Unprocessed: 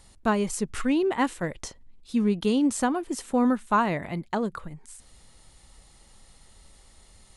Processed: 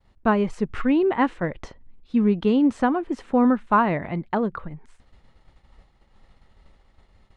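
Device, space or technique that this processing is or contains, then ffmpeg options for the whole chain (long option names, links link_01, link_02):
hearing-loss simulation: -af "lowpass=2300,agate=range=-33dB:threshold=-48dB:ratio=3:detection=peak,volume=4dB"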